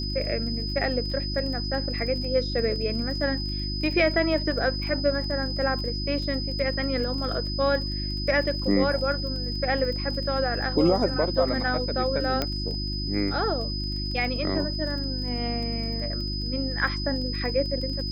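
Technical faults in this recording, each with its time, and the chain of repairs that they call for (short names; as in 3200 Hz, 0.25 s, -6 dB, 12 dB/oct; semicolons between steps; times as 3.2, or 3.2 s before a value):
crackle 24/s -34 dBFS
hum 50 Hz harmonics 7 -31 dBFS
tone 5000 Hz -32 dBFS
12.42 pop -11 dBFS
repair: de-click; notch 5000 Hz, Q 30; de-hum 50 Hz, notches 7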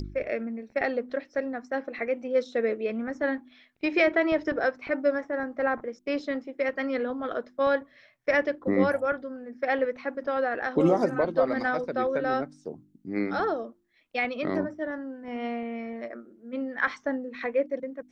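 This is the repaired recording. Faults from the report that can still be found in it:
none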